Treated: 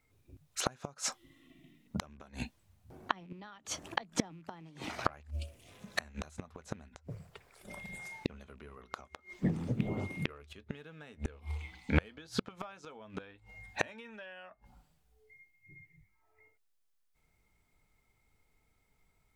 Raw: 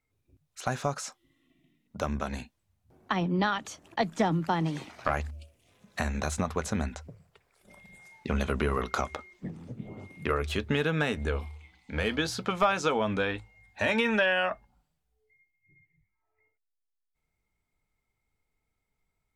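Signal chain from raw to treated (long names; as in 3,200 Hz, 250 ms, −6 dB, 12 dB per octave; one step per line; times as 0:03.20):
loose part that buzzes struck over −30 dBFS, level −35 dBFS
gate with flip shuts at −22 dBFS, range −31 dB
level +7.5 dB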